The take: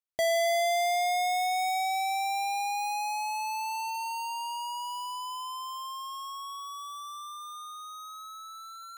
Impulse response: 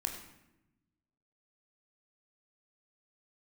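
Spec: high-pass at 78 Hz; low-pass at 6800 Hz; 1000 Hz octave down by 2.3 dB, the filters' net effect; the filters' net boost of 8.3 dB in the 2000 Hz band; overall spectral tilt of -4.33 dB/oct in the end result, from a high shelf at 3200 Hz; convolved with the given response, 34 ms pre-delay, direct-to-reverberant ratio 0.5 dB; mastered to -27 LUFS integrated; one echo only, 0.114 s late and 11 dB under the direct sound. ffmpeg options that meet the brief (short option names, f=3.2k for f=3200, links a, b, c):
-filter_complex "[0:a]highpass=78,lowpass=6.8k,equalizer=f=1k:t=o:g=-5.5,equalizer=f=2k:t=o:g=7,highshelf=f=3.2k:g=9,aecho=1:1:114:0.282,asplit=2[a][b];[1:a]atrim=start_sample=2205,adelay=34[c];[b][c]afir=irnorm=-1:irlink=0,volume=-2.5dB[d];[a][d]amix=inputs=2:normalize=0,volume=-2dB"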